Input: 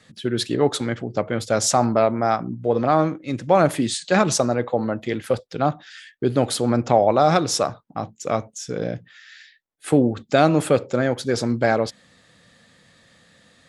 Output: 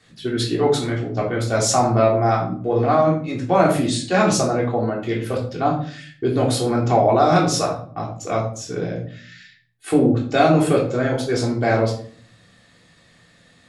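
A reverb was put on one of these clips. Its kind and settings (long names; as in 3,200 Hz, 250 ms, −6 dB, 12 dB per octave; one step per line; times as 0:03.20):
rectangular room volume 480 cubic metres, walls furnished, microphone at 3.4 metres
level −4 dB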